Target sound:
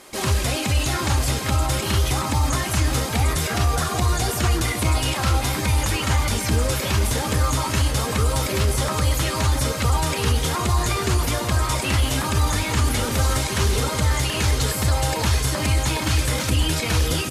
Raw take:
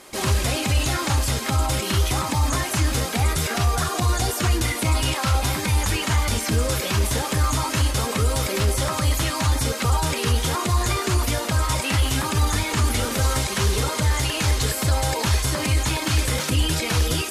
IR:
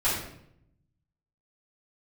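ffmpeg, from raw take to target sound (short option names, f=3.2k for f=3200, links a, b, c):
-filter_complex "[0:a]asplit=2[a][b];[b]adelay=758,volume=-7dB,highshelf=f=4k:g=-17.1[c];[a][c]amix=inputs=2:normalize=0"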